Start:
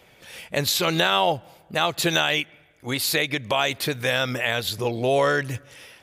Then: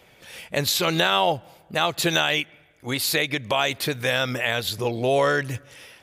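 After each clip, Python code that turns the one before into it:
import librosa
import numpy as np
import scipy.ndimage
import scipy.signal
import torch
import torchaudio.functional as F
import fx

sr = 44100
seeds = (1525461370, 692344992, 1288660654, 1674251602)

y = x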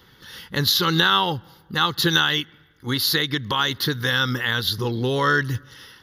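y = fx.fixed_phaser(x, sr, hz=2400.0, stages=6)
y = y * 10.0 ** (5.5 / 20.0)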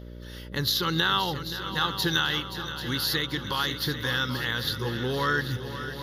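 y = fx.dmg_buzz(x, sr, base_hz=60.0, harmonics=10, level_db=-35.0, tilt_db=-5, odd_only=False)
y = fx.echo_heads(y, sr, ms=263, heads='second and third', feedback_pct=58, wet_db=-12.0)
y = y * 10.0 ** (-6.5 / 20.0)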